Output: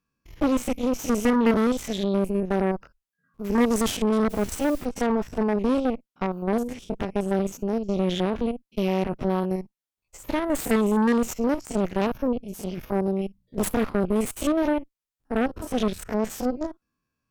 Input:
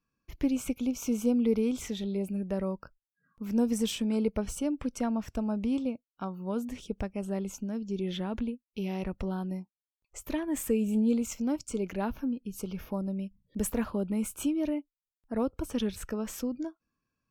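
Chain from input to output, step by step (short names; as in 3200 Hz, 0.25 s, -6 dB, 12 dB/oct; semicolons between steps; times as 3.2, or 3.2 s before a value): stepped spectrum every 50 ms; added harmonics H 7 -30 dB, 8 -13 dB, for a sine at -17 dBFS; 4.29–4.84 added noise white -53 dBFS; gain +6 dB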